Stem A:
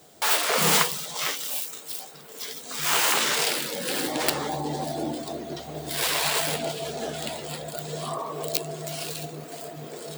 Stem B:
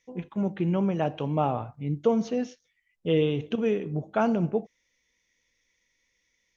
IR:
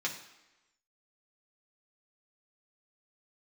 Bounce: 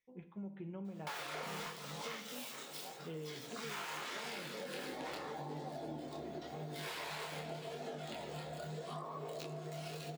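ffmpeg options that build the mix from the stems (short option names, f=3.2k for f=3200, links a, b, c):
-filter_complex "[0:a]asoftclip=type=hard:threshold=-17dB,flanger=delay=20:depth=7.8:speed=0.85,adelay=850,volume=-2dB,asplit=3[a][b][c];[b]volume=-7.5dB[d];[c]volume=-15dB[e];[1:a]volume=-19.5dB,asplit=2[f][g];[g]volume=-3.5dB[h];[2:a]atrim=start_sample=2205[i];[d][h]amix=inputs=2:normalize=0[j];[j][i]afir=irnorm=-1:irlink=0[k];[e]aecho=0:1:434:1[l];[a][f][k][l]amix=inputs=4:normalize=0,highshelf=f=4.1k:g=-11.5,acompressor=threshold=-42dB:ratio=6"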